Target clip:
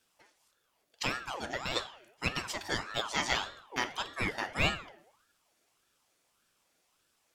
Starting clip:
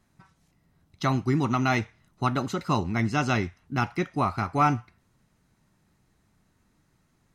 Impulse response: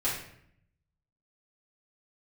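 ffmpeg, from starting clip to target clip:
-filter_complex "[0:a]tiltshelf=frequency=1100:gain=-9.5,asplit=3[link_01][link_02][link_03];[link_01]afade=type=out:start_time=1.16:duration=0.02[link_04];[link_02]acompressor=threshold=-31dB:ratio=2,afade=type=in:start_time=1.16:duration=0.02,afade=type=out:start_time=1.75:duration=0.02[link_05];[link_03]afade=type=in:start_time=1.75:duration=0.02[link_06];[link_04][link_05][link_06]amix=inputs=3:normalize=0,asplit=2[link_07][link_08];[1:a]atrim=start_sample=2205[link_09];[link_08][link_09]afir=irnorm=-1:irlink=0,volume=-16dB[link_10];[link_07][link_10]amix=inputs=2:normalize=0,aeval=exprs='val(0)*sin(2*PI*1000*n/s+1000*0.55/1.7*sin(2*PI*1.7*n/s))':channel_layout=same,volume=-4.5dB"

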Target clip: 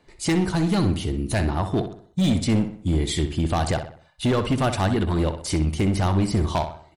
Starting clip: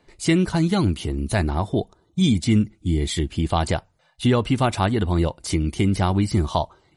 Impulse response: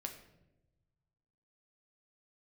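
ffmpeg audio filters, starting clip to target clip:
-filter_complex "[0:a]asoftclip=type=hard:threshold=-16.5dB,asplit=2[link_01][link_02];[link_02]adelay=63,lowpass=frequency=4200:poles=1,volume=-9dB,asplit=2[link_03][link_04];[link_04]adelay=63,lowpass=frequency=4200:poles=1,volume=0.44,asplit=2[link_05][link_06];[link_06]adelay=63,lowpass=frequency=4200:poles=1,volume=0.44,asplit=2[link_07][link_08];[link_08]adelay=63,lowpass=frequency=4200:poles=1,volume=0.44,asplit=2[link_09][link_10];[link_10]adelay=63,lowpass=frequency=4200:poles=1,volume=0.44[link_11];[link_01][link_03][link_05][link_07][link_09][link_11]amix=inputs=6:normalize=0"

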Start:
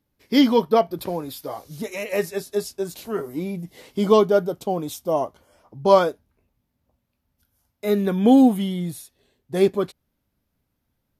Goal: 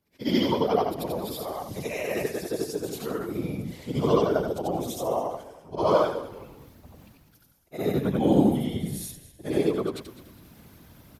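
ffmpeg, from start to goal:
ffmpeg -i in.wav -filter_complex "[0:a]afftfilt=real='re':imag='-im':win_size=8192:overlap=0.75,areverse,acompressor=mode=upward:threshold=-32dB:ratio=2.5,areverse,afftfilt=real='hypot(re,im)*cos(2*PI*random(0))':imag='hypot(re,im)*sin(2*PI*random(1))':win_size=512:overlap=0.75,highpass=48,asplit=2[link_01][link_02];[link_02]acompressor=threshold=-37dB:ratio=6,volume=1.5dB[link_03];[link_01][link_03]amix=inputs=2:normalize=0,asplit=4[link_04][link_05][link_06][link_07];[link_05]adelay=204,afreqshift=-41,volume=-16dB[link_08];[link_06]adelay=408,afreqshift=-82,volume=-24.4dB[link_09];[link_07]adelay=612,afreqshift=-123,volume=-32.8dB[link_10];[link_04][link_08][link_09][link_10]amix=inputs=4:normalize=0,volume=2.5dB" out.wav

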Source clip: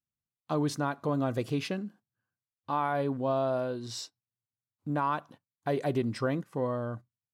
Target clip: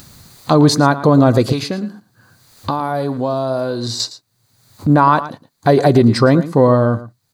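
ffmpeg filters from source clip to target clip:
ffmpeg -i in.wav -filter_complex "[0:a]highshelf=frequency=3600:width_type=q:width=3:gain=6.5,asettb=1/sr,asplit=3[link_01][link_02][link_03];[link_01]atrim=end=1.524[link_04];[link_02]atrim=start=1.52:end=4,asetpts=PTS-STARTPTS,afade=type=in:duration=0.004:curve=qsin,afade=type=out:start_time=2.476:duration=0.004:curve=qsin,acrossover=split=680|5500[link_05][link_06][link_07];[link_05]acompressor=threshold=-42dB:ratio=4[link_08];[link_06]acompressor=threshold=-45dB:ratio=4[link_09];[link_07]acompressor=threshold=-43dB:ratio=4[link_10];[link_08][link_09][link_10]amix=inputs=3:normalize=0[link_11];[link_03]atrim=start=3.996[link_12];[link_04][link_11]acrossfade=duration=0.004:curve1=hsin:curve2=qsin[link_13];[link_13][link_12]acrossfade=duration=0.004:curve1=qsin:curve2=hsin,bass=frequency=250:gain=1,treble=frequency=4000:gain=-10,acompressor=mode=upward:threshold=-37dB:ratio=2.5,bandreject=frequency=5400:width=7.7,aecho=1:1:113:0.168,alimiter=level_in=21dB:limit=-1dB:release=50:level=0:latency=1,volume=-1dB" out.wav

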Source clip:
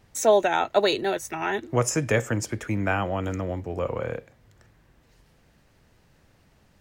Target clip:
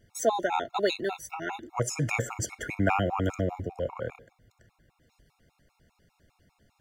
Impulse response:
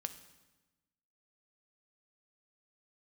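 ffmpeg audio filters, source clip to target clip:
-filter_complex "[0:a]asplit=3[link_01][link_02][link_03];[link_01]afade=type=out:start_time=1.99:duration=0.02[link_04];[link_02]acontrast=37,afade=type=in:start_time=1.99:duration=0.02,afade=type=out:start_time=3.67:duration=0.02[link_05];[link_03]afade=type=in:start_time=3.67:duration=0.02[link_06];[link_04][link_05][link_06]amix=inputs=3:normalize=0,afftfilt=real='re*gt(sin(2*PI*5*pts/sr)*(1-2*mod(floor(b*sr/1024/710),2)),0)':imag='im*gt(sin(2*PI*5*pts/sr)*(1-2*mod(floor(b*sr/1024/710),2)),0)':win_size=1024:overlap=0.75,volume=-2.5dB"

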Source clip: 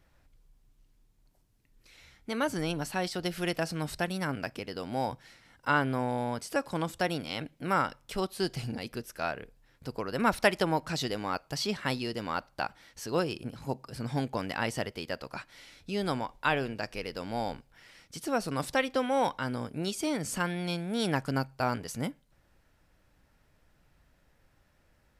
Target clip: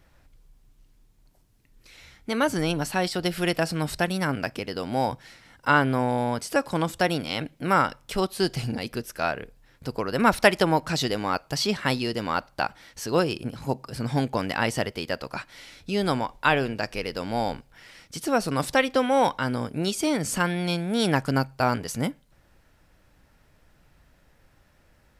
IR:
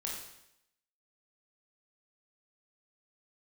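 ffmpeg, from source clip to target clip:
-filter_complex "[0:a]asettb=1/sr,asplit=3[link_01][link_02][link_03];[link_01]atrim=end=3.034[link_04];[link_02]atrim=start=3.03:end=3.9,asetpts=PTS-STARTPTS,afade=type=in:duration=0.004:curve=qsin,afade=type=out:start_time=0.866:duration=0.004:curve=qsin,bandreject=frequency=6200:width=12[link_05];[link_03]atrim=start=3.896[link_06];[link_04][link_05]acrossfade=duration=0.004:curve1=hsin:curve2=qsin[link_07];[link_07][link_06]acrossfade=duration=0.004:curve1=qsin:curve2=hsin,volume=6.5dB"

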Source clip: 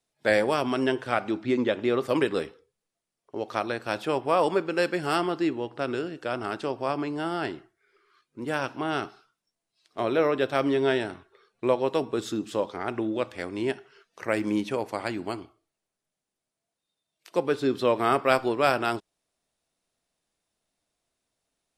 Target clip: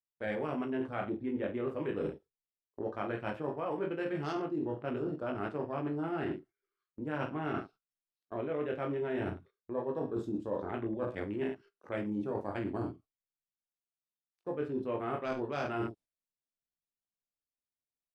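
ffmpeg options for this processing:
ffmpeg -i in.wav -af "afwtdn=0.0158,lowshelf=frequency=310:gain=9,aecho=1:1:20|43|69.45|99.87|134.8:0.631|0.398|0.251|0.158|0.1,areverse,acompressor=threshold=-32dB:ratio=10,areverse,atempo=1.2,agate=range=-13dB:threshold=-55dB:ratio=16:detection=peak" out.wav

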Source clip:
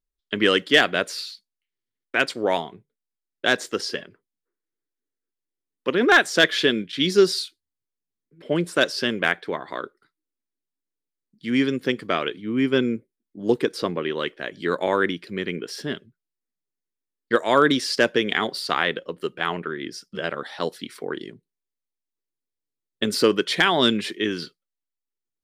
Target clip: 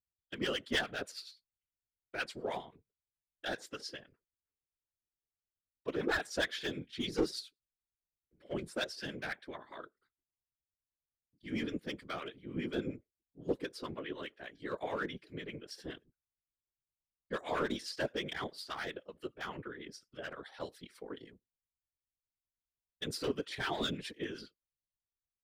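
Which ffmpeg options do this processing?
ffmpeg -i in.wav -filter_complex "[0:a]aeval=exprs='clip(val(0),-1,0.2)':channel_layout=same,acrossover=split=950[link_01][link_02];[link_01]aeval=exprs='val(0)*(1-0.7/2+0.7/2*cos(2*PI*9.7*n/s))':channel_layout=same[link_03];[link_02]aeval=exprs='val(0)*(1-0.7/2-0.7/2*cos(2*PI*9.7*n/s))':channel_layout=same[link_04];[link_03][link_04]amix=inputs=2:normalize=0,afftfilt=real='hypot(re,im)*cos(2*PI*random(0))':imag='hypot(re,im)*sin(2*PI*random(1))':win_size=512:overlap=0.75,volume=-6.5dB" out.wav

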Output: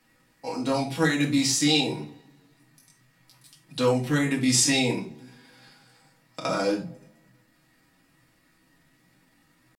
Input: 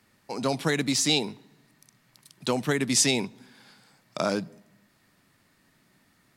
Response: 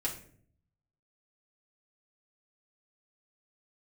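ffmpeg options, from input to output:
-filter_complex "[0:a]bandreject=frequency=74.36:width_type=h:width=4,bandreject=frequency=148.72:width_type=h:width=4,bandreject=frequency=223.08:width_type=h:width=4,bandreject=frequency=297.44:width_type=h:width=4,bandreject=frequency=371.8:width_type=h:width=4,bandreject=frequency=446.16:width_type=h:width=4,bandreject=frequency=520.52:width_type=h:width=4,bandreject=frequency=594.88:width_type=h:width=4,bandreject=frequency=669.24:width_type=h:width=4,bandreject=frequency=743.6:width_type=h:width=4,bandreject=frequency=817.96:width_type=h:width=4,bandreject=frequency=892.32:width_type=h:width=4,atempo=0.65[link_01];[1:a]atrim=start_sample=2205,afade=type=out:start_time=0.15:duration=0.01,atrim=end_sample=7056[link_02];[link_01][link_02]afir=irnorm=-1:irlink=0,volume=-1.5dB"

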